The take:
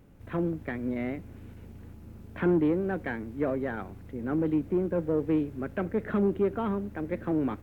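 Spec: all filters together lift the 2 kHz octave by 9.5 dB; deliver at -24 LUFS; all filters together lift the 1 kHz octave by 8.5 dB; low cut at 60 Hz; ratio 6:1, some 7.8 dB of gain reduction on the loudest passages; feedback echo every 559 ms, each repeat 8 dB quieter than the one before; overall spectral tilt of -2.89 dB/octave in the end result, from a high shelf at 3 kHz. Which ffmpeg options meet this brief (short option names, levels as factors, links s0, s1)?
-af "highpass=60,equalizer=f=1000:t=o:g=8.5,equalizer=f=2000:t=o:g=6.5,highshelf=f=3000:g=7.5,acompressor=threshold=0.0398:ratio=6,aecho=1:1:559|1118|1677|2236|2795:0.398|0.159|0.0637|0.0255|0.0102,volume=2.82"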